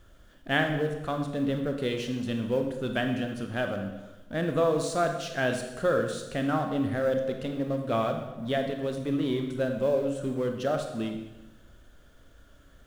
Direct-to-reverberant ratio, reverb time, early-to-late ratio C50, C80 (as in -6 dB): 4.5 dB, 1.1 s, 6.0 dB, 8.5 dB